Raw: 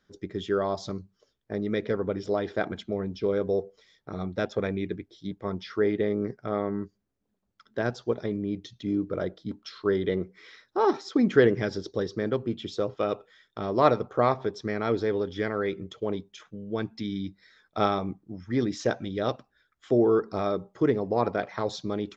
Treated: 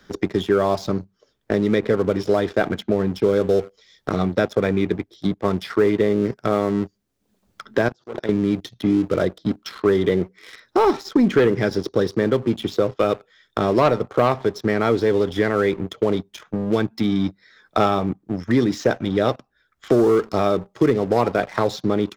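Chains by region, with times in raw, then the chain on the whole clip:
0:07.88–0:08.29: low-shelf EQ 270 Hz −8 dB + mains-hum notches 50/100/150/200/250/300/350 Hz + output level in coarse steps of 21 dB
whole clip: leveller curve on the samples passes 2; multiband upward and downward compressor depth 70%; level +1 dB

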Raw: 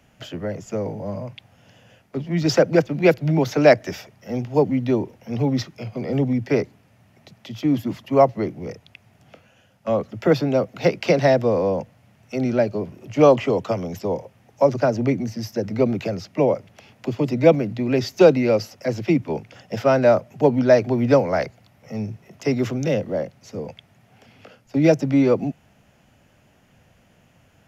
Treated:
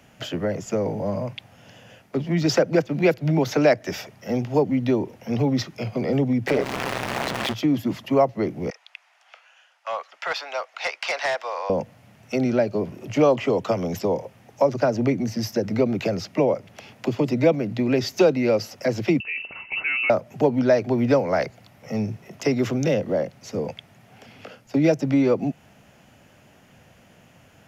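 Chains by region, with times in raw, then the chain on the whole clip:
0:06.47–0:07.54: converter with a step at zero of −24 dBFS + mid-hump overdrive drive 15 dB, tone 1,600 Hz, clips at −6.5 dBFS + amplitude modulation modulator 130 Hz, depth 75%
0:08.70–0:11.70: high-pass filter 870 Hz 24 dB per octave + hard clipping −24 dBFS + high-frequency loss of the air 63 metres
0:19.20–0:20.10: parametric band 130 Hz +11.5 dB 0.36 octaves + downward compressor 2.5 to 1, threshold −33 dBFS + voice inversion scrambler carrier 2,800 Hz
whole clip: low-shelf EQ 79 Hz −9 dB; downward compressor 2 to 1, threshold −26 dBFS; level +5 dB

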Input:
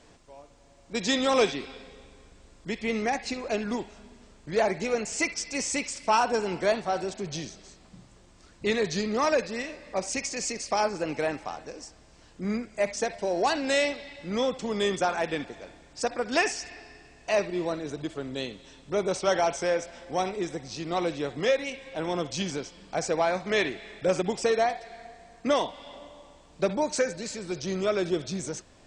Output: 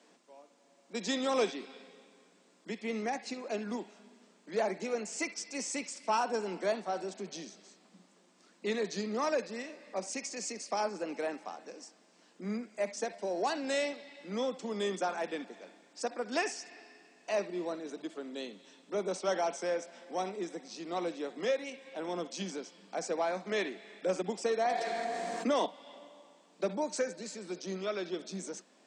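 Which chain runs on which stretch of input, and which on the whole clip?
0:24.65–0:25.66: Butterworth high-pass 160 Hz + envelope flattener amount 70%
0:27.76–0:28.19: low-pass filter 5,300 Hz 24 dB per octave + tilt shelving filter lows −4 dB, about 1,200 Hz
whole clip: Butterworth high-pass 180 Hz 72 dB per octave; dynamic equaliser 2,600 Hz, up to −3 dB, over −43 dBFS, Q 0.78; level −6.5 dB

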